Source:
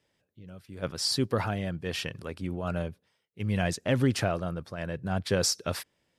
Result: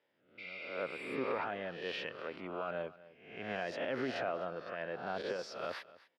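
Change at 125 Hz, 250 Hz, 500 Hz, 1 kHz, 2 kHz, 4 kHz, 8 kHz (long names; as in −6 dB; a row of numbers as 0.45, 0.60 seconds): −22.5 dB, −13.0 dB, −5.5 dB, −4.0 dB, −4.0 dB, −13.5 dB, below −25 dB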